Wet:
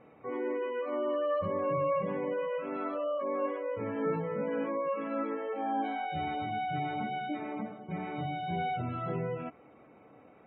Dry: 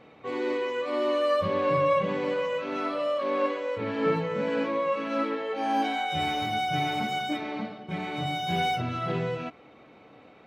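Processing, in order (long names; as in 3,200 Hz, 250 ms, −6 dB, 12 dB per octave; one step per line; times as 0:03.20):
gate on every frequency bin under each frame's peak −25 dB strong
in parallel at −2 dB: brickwall limiter −23 dBFS, peak gain reduction 8 dB
on the sum: Gaussian smoothing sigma 3.3 samples
level −8.5 dB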